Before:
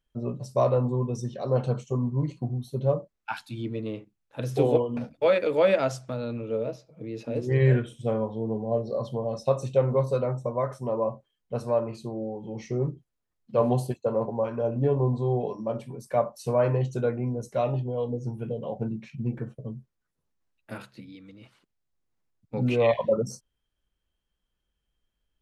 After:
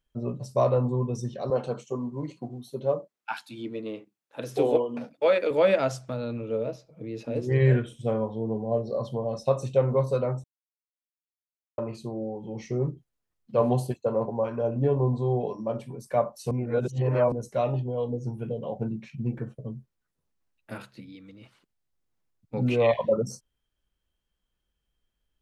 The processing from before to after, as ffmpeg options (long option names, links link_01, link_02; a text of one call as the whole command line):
ffmpeg -i in.wav -filter_complex "[0:a]asettb=1/sr,asplit=3[link_01][link_02][link_03];[link_01]atrim=end=1.504[link_04];[link_02]atrim=start=1.5:end=5.51,asetpts=PTS-STARTPTS,afade=type=in:duration=0.004:curve=qsin,afade=type=out:start_time=4.006:duration=0.004:curve=qsin,highpass=240[link_05];[link_03]atrim=start=5.506[link_06];[link_04][link_05]acrossfade=duration=0.004:curve1=hsin:curve2=qsin[link_07];[link_07][link_06]acrossfade=duration=0.004:curve1=qsin:curve2=hsin,asplit=5[link_08][link_09][link_10][link_11][link_12];[link_08]atrim=end=10.44,asetpts=PTS-STARTPTS,afade=type=out:start_time=10.436:duration=0.004:curve=hsin[link_13];[link_09]atrim=start=10.44:end=11.78,asetpts=PTS-STARTPTS,volume=0[link_14];[link_10]atrim=start=11.78:end=16.512,asetpts=PTS-STARTPTS,afade=type=in:duration=0.004:curve=hsin[link_15];[link_11]atrim=start=16.508:end=17.322,asetpts=PTS-STARTPTS,areverse[link_16];[link_12]atrim=start=17.318[link_17];[link_13][link_14][link_15]concat=n=3:v=0:a=1[link_18];[link_18][link_16]acrossfade=duration=0.004:curve1=hsin:curve2=hsin[link_19];[link_19][link_17]acrossfade=duration=0.004:curve1=hsin:curve2=hsin" out.wav